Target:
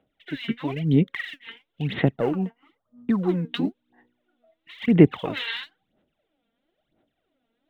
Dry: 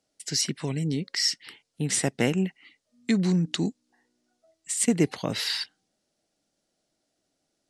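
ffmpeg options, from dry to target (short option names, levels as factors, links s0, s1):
-filter_complex "[0:a]aresample=8000,aresample=44100,asplit=2[s0][s1];[s1]alimiter=limit=0.141:level=0:latency=1:release=32,volume=1.26[s2];[s0][s2]amix=inputs=2:normalize=0,asettb=1/sr,asplit=3[s3][s4][s5];[s3]atrim=end=2.164[s6];[s4]atrim=start=2.16:end=3.29,asetpts=PTS-STARTPTS,afade=t=in:d=0.004:c=qsin,afade=t=out:st=1.126:d=0.004:c=qsin,highshelf=f=1600:t=q:w=3:g=-10.5[s7];[s5]atrim=start=3.286[s8];[s6][s7]acrossfade=d=0.004:c1=hsin:c2=qsin[s9];[s9][s8]acrossfade=d=0.004:c1=qsin:c2=hsin,aphaser=in_gain=1:out_gain=1:delay=4.4:decay=0.74:speed=1:type=sinusoidal,volume=0.473"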